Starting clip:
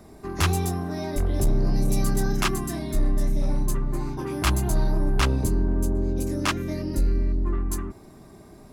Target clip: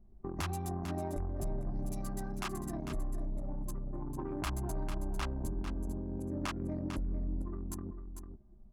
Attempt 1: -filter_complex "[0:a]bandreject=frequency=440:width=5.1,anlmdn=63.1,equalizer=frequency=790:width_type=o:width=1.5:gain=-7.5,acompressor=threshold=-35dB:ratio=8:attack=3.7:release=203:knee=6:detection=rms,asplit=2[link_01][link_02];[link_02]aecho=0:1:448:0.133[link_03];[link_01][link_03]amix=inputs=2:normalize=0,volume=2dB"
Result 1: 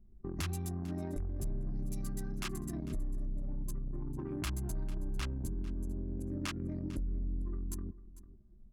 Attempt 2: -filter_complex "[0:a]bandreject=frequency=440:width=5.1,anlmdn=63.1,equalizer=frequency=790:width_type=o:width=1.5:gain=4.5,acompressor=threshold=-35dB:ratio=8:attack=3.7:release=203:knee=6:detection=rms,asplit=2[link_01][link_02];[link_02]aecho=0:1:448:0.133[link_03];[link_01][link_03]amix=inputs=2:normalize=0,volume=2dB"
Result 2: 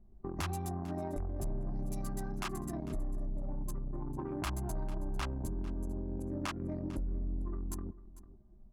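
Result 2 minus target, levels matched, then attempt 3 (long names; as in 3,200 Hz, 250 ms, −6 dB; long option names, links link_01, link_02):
echo-to-direct −9 dB
-filter_complex "[0:a]bandreject=frequency=440:width=5.1,anlmdn=63.1,equalizer=frequency=790:width_type=o:width=1.5:gain=4.5,acompressor=threshold=-35dB:ratio=8:attack=3.7:release=203:knee=6:detection=rms,asplit=2[link_01][link_02];[link_02]aecho=0:1:448:0.376[link_03];[link_01][link_03]amix=inputs=2:normalize=0,volume=2dB"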